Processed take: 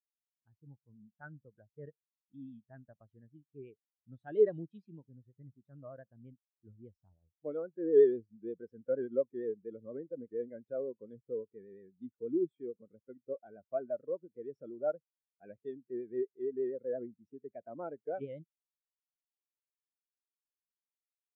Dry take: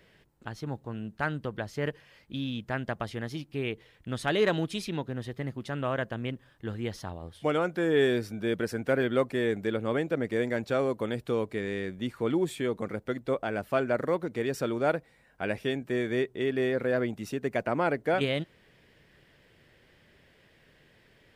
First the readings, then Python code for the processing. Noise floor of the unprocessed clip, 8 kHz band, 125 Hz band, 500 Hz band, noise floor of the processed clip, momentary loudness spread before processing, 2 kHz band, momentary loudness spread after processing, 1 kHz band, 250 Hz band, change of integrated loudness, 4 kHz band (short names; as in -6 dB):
-62 dBFS, under -30 dB, -19.0 dB, -5.0 dB, under -85 dBFS, 10 LU, under -25 dB, 23 LU, -18.0 dB, -11.5 dB, -5.0 dB, under -35 dB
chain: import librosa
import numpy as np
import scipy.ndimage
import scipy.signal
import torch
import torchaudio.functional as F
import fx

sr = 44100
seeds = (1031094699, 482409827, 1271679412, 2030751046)

y = fx.vibrato(x, sr, rate_hz=8.5, depth_cents=59.0)
y = fx.spectral_expand(y, sr, expansion=2.5)